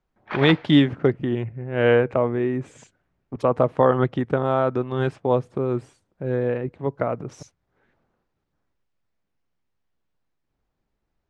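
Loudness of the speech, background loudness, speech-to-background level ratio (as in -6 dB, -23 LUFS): -22.5 LUFS, -32.0 LUFS, 9.5 dB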